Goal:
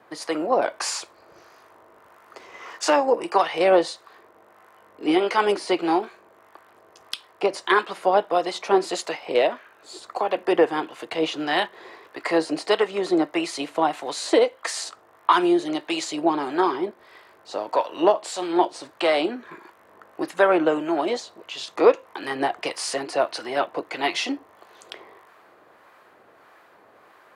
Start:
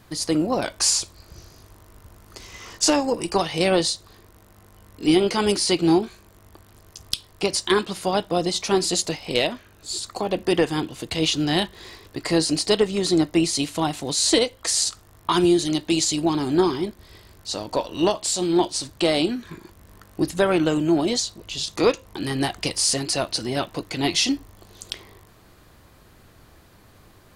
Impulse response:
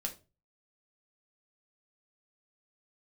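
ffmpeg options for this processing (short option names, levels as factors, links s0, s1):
-filter_complex "[0:a]highpass=160,acrossover=split=830[s0][s1];[s0]aeval=exprs='val(0)*(1-0.5/2+0.5/2*cos(2*PI*1.6*n/s))':c=same[s2];[s1]aeval=exprs='val(0)*(1-0.5/2-0.5/2*cos(2*PI*1.6*n/s))':c=same[s3];[s2][s3]amix=inputs=2:normalize=0,acrossover=split=410 2300:gain=0.1 1 0.126[s4][s5][s6];[s4][s5][s6]amix=inputs=3:normalize=0,volume=2.51"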